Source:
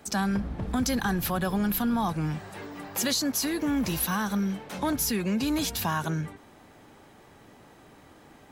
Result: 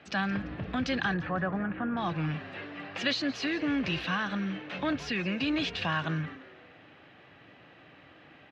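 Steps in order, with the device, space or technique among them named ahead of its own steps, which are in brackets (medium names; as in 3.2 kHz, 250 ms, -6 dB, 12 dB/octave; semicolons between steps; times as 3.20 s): 1.14–1.97 s: low-pass 1.8 kHz 24 dB/octave; frequency-shifting delay pedal into a guitar cabinet (frequency-shifting echo 171 ms, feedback 44%, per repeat +110 Hz, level -17 dB; cabinet simulation 110–3900 Hz, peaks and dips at 220 Hz -8 dB, 410 Hz -7 dB, 910 Hz -8 dB, 1.8 kHz +4 dB, 2.7 kHz +8 dB)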